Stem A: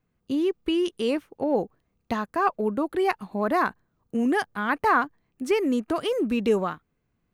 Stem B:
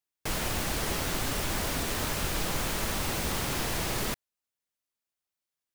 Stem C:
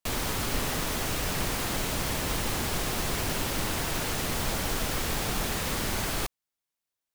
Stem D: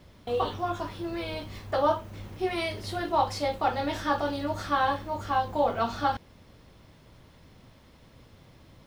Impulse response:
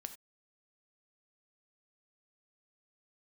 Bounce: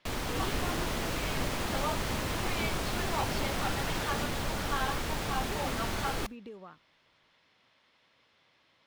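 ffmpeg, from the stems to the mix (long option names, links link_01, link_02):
-filter_complex "[0:a]acompressor=threshold=-32dB:ratio=12,volume=-10.5dB[link_01];[1:a]adelay=100,volume=-7dB[link_02];[2:a]volume=-4dB,asplit=2[link_03][link_04];[link_04]volume=-14.5dB[link_05];[3:a]bandpass=frequency=2900:width_type=q:width=0.74:csg=0,volume=-2dB[link_06];[4:a]atrim=start_sample=2205[link_07];[link_05][link_07]afir=irnorm=-1:irlink=0[link_08];[link_01][link_02][link_03][link_06][link_08]amix=inputs=5:normalize=0,highshelf=frequency=6200:gain=-9.5"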